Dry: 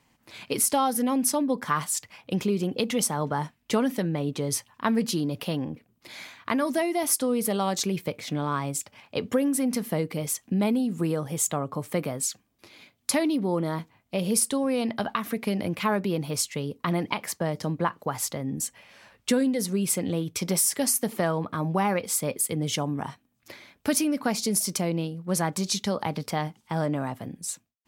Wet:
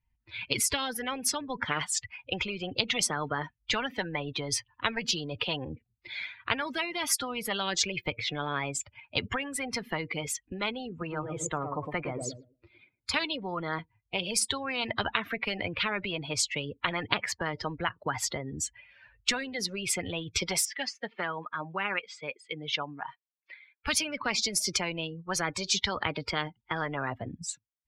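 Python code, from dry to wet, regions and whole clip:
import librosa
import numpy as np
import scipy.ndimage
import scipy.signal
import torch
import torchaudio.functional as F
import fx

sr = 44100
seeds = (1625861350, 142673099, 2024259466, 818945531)

y = fx.chain(x, sr, fx.high_shelf(hz=2600.0, db=-8.5),
    fx.echo_tape(ms=111, feedback_pct=45, wet_db=-4.5, lp_hz=1000.0, drive_db=19.0, wow_cents=30), at=(10.89, 13.14))
y = fx.chain(y, sr, fx.highpass(hz=1400.0, slope=6),
    fx.air_absorb(metres=140.0), at=(20.65, 23.87))
y = fx.bin_expand(y, sr, power=2.0)
y = scipy.signal.sosfilt(scipy.signal.butter(2, 2500.0, 'lowpass', fs=sr, output='sos'), y)
y = fx.spectral_comp(y, sr, ratio=10.0)
y = y * 10.0 ** (8.5 / 20.0)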